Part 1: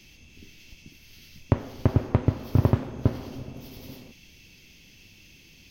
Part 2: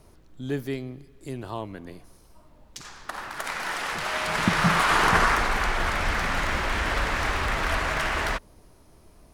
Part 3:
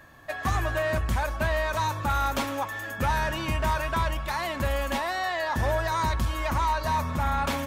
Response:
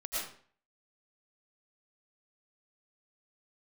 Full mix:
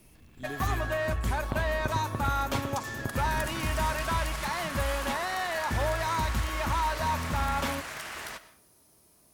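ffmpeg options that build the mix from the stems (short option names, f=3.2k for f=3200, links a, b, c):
-filter_complex "[0:a]lowpass=1.4k,acompressor=threshold=-29dB:ratio=6,volume=-2dB[a];[1:a]highpass=100,aemphasis=mode=production:type=75kf,acompressor=threshold=-26dB:ratio=6,volume=-10.5dB,asplit=2[b][c];[c]volume=-16.5dB[d];[2:a]aeval=exprs='sgn(val(0))*max(abs(val(0))-0.00355,0)':c=same,adelay=150,volume=-2.5dB[e];[3:a]atrim=start_sample=2205[f];[d][f]afir=irnorm=-1:irlink=0[g];[a][b][e][g]amix=inputs=4:normalize=0"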